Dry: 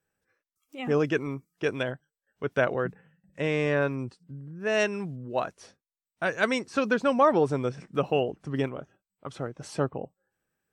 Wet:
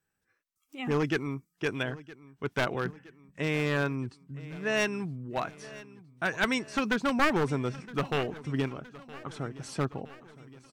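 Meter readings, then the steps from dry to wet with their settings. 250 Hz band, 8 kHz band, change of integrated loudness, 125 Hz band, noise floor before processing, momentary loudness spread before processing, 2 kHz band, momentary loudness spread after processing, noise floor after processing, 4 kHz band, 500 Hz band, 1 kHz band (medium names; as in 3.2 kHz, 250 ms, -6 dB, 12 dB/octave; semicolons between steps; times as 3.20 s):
-1.0 dB, +1.5 dB, -3.0 dB, 0.0 dB, under -85 dBFS, 15 LU, -0.5 dB, 16 LU, -80 dBFS, +1.5 dB, -6.0 dB, -3.5 dB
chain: one-sided wavefolder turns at -18.5 dBFS; peaking EQ 540 Hz -8 dB 0.65 oct; feedback delay 966 ms, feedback 59%, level -19 dB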